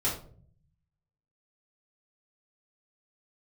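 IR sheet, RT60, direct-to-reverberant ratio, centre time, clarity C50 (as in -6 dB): 0.50 s, -8.0 dB, 30 ms, 6.5 dB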